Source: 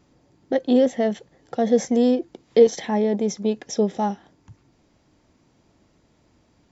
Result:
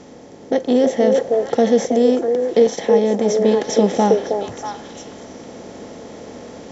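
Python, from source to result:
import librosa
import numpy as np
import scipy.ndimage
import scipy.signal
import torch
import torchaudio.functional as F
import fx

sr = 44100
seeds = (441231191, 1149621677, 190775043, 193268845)

y = fx.bin_compress(x, sr, power=0.6)
y = fx.echo_stepped(y, sr, ms=319, hz=480.0, octaves=1.4, feedback_pct=70, wet_db=-1.0)
y = fx.rider(y, sr, range_db=10, speed_s=0.5)
y = y * 10.0 ** (1.5 / 20.0)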